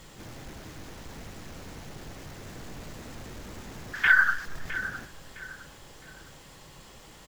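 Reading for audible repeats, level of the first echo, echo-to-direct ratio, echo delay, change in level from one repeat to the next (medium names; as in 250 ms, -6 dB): 3, -13.5 dB, -13.0 dB, 660 ms, -10.0 dB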